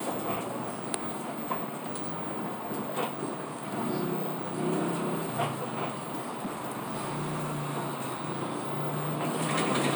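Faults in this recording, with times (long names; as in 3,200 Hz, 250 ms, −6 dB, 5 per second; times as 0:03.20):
0:05.93–0:07.67: clipping −29 dBFS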